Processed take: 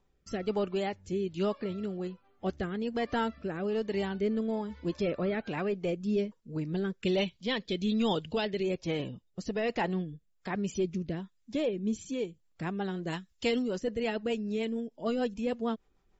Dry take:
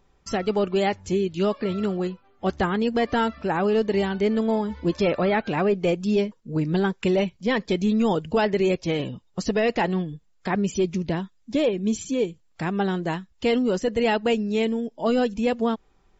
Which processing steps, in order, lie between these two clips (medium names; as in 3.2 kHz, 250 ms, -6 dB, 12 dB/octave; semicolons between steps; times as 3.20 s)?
7.05–8.63 s: peaking EQ 3.6 kHz +12 dB 0.94 oct; rotary cabinet horn 1.2 Hz, later 6.7 Hz, at 11.94 s; 13.07–13.68 s: treble shelf 2.6 kHz +10.5 dB; trim -7 dB